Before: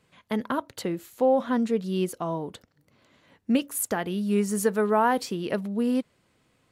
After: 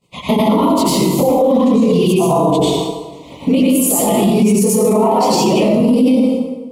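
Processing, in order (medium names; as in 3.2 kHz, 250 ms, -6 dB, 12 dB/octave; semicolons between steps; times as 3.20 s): phase randomisation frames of 50 ms; reverb removal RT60 0.83 s; expander -53 dBFS; compression 2:1, threshold -44 dBFS, peak gain reduction 15 dB; 0.68–2.18 s: touch-sensitive flanger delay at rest 9.1 ms, full sweep at -31 dBFS; Butterworth band-stop 1.6 kHz, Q 1.3; plate-style reverb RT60 1.2 s, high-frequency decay 0.7×, pre-delay 80 ms, DRR -7.5 dB; loudness maximiser +33 dB; trim -4.5 dB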